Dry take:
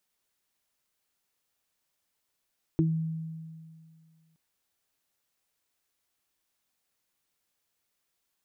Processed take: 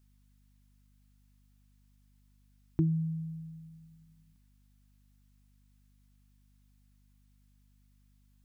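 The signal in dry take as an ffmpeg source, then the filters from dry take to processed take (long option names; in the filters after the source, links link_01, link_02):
-f lavfi -i "aevalsrc='0.0841*pow(10,-3*t/2.13)*sin(2*PI*161*t)+0.112*pow(10,-3*t/0.2)*sin(2*PI*322*t)':duration=1.57:sample_rate=44100"
-af "equalizer=frequency=510:width_type=o:width=0.78:gain=-11.5,aeval=exprs='val(0)+0.000631*(sin(2*PI*50*n/s)+sin(2*PI*2*50*n/s)/2+sin(2*PI*3*50*n/s)/3+sin(2*PI*4*50*n/s)/4+sin(2*PI*5*50*n/s)/5)':channel_layout=same"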